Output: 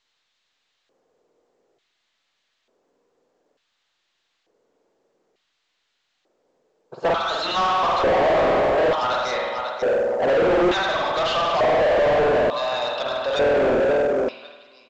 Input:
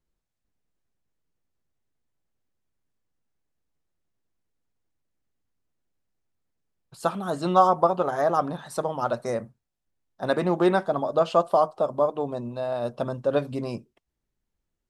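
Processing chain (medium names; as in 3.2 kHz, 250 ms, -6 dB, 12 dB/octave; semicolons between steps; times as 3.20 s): on a send: feedback delay 541 ms, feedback 17%, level -10.5 dB; on the sum: spring tank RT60 1.2 s, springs 48 ms, chirp 40 ms, DRR -1 dB; LFO band-pass square 0.56 Hz 460–3900 Hz; overdrive pedal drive 35 dB, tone 1.4 kHz, clips at -10.5 dBFS; in parallel at -4 dB: overload inside the chain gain 23.5 dB; on the sum: trim -2.5 dB; µ-law 128 kbps 16 kHz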